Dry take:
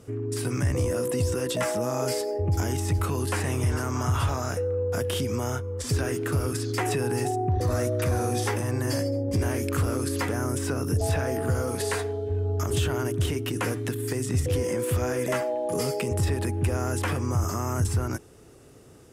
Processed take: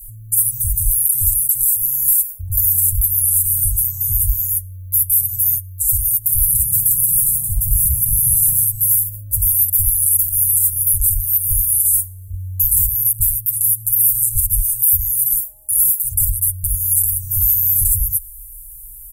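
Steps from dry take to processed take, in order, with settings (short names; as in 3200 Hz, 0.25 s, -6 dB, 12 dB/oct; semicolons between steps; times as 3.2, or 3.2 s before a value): inverse Chebyshev band-stop 170–4900 Hz, stop band 60 dB; high shelf 2600 Hz +11 dB; comb 6.9 ms, depth 87%; 6.09–8.65 frequency-shifting echo 0.173 s, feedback 37%, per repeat +30 Hz, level -5.5 dB; maximiser +27 dB; gain -2 dB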